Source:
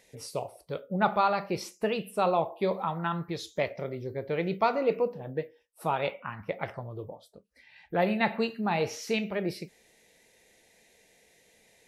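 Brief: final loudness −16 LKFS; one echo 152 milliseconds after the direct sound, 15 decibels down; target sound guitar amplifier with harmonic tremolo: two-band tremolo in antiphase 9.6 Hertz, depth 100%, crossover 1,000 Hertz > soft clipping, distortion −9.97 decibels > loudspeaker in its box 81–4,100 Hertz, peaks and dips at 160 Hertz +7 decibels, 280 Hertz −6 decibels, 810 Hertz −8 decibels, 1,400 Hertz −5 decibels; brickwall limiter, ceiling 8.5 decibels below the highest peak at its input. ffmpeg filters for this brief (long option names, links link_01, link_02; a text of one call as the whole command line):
ffmpeg -i in.wav -filter_complex "[0:a]alimiter=limit=-21dB:level=0:latency=1,aecho=1:1:152:0.178,acrossover=split=1000[link_01][link_02];[link_01]aeval=exprs='val(0)*(1-1/2+1/2*cos(2*PI*9.6*n/s))':channel_layout=same[link_03];[link_02]aeval=exprs='val(0)*(1-1/2-1/2*cos(2*PI*9.6*n/s))':channel_layout=same[link_04];[link_03][link_04]amix=inputs=2:normalize=0,asoftclip=threshold=-33.5dB,highpass=81,equalizer=frequency=160:width_type=q:width=4:gain=7,equalizer=frequency=280:width_type=q:width=4:gain=-6,equalizer=frequency=810:width_type=q:width=4:gain=-8,equalizer=frequency=1400:width_type=q:width=4:gain=-5,lowpass=frequency=4100:width=0.5412,lowpass=frequency=4100:width=1.3066,volume=26.5dB" out.wav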